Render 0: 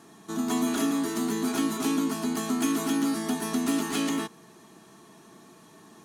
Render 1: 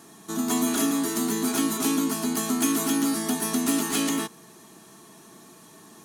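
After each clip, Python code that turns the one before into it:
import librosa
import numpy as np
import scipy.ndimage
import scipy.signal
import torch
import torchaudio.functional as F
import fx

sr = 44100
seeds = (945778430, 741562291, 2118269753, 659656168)

y = fx.high_shelf(x, sr, hz=6400.0, db=10.0)
y = F.gain(torch.from_numpy(y), 1.5).numpy()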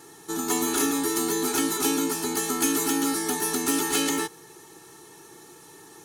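y = x + 0.82 * np.pad(x, (int(2.3 * sr / 1000.0), 0))[:len(x)]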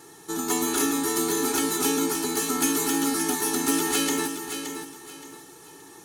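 y = fx.echo_feedback(x, sr, ms=572, feedback_pct=29, wet_db=-8.5)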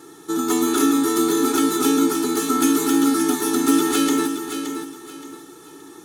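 y = fx.small_body(x, sr, hz=(300.0, 1300.0, 3500.0), ring_ms=20, db=10)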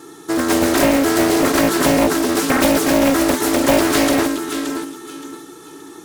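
y = fx.doppler_dist(x, sr, depth_ms=0.93)
y = F.gain(torch.from_numpy(y), 4.5).numpy()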